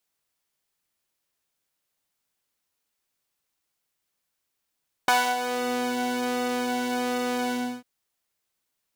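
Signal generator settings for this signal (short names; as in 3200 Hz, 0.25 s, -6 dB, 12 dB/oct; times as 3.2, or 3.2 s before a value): synth patch with pulse-width modulation B3, interval +19 st, detune 12 cents, oscillator 2 level -2.5 dB, filter highpass, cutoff 170 Hz, Q 1.5, filter envelope 2.5 oct, filter decay 0.61 s, filter sustain 40%, attack 4 ms, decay 0.27 s, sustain -11 dB, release 0.32 s, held 2.43 s, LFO 1.3 Hz, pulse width 36%, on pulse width 5%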